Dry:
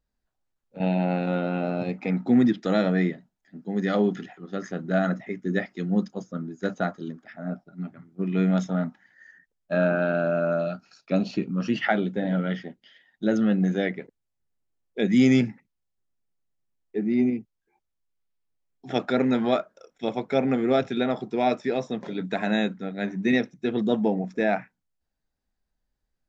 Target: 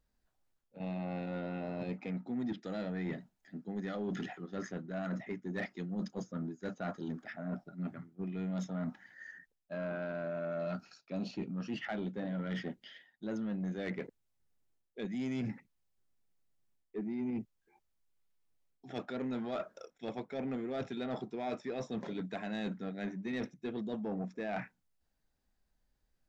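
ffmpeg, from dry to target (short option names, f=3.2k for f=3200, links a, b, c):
-af "areverse,acompressor=threshold=-35dB:ratio=8,areverse,asoftclip=type=tanh:threshold=-31dB,volume=1.5dB"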